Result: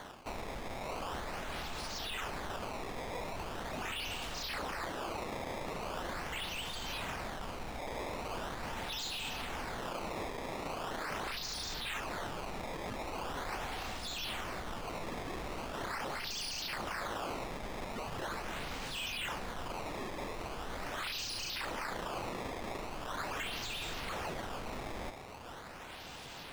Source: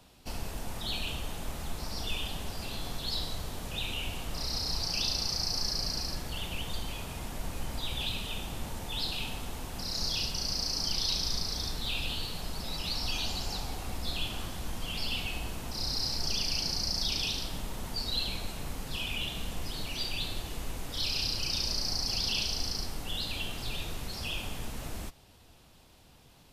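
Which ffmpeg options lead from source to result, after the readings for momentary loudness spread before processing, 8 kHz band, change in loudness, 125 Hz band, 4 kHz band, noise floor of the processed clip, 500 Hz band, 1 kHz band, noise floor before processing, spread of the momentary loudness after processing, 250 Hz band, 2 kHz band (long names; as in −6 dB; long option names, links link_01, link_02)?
10 LU, −8.5 dB, −6.5 dB, −8.0 dB, −10.0 dB, −47 dBFS, +3.5 dB, +4.5 dB, −57 dBFS, 5 LU, −2.5 dB, +0.5 dB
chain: -filter_complex "[0:a]areverse,acompressor=threshold=-44dB:ratio=5,areverse,acrusher=samples=17:mix=1:aa=0.000001:lfo=1:lforange=27.2:lforate=0.41,asplit=2[link_01][link_02];[link_02]highpass=frequency=720:poles=1,volume=13dB,asoftclip=type=tanh:threshold=-33dB[link_03];[link_01][link_03]amix=inputs=2:normalize=0,lowpass=frequency=4400:poles=1,volume=-6dB,alimiter=level_in=15.5dB:limit=-24dB:level=0:latency=1:release=32,volume=-15.5dB,volume=8dB"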